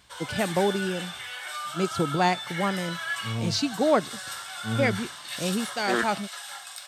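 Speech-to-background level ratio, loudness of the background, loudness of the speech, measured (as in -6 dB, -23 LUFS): 6.5 dB, -34.0 LUFS, -27.5 LUFS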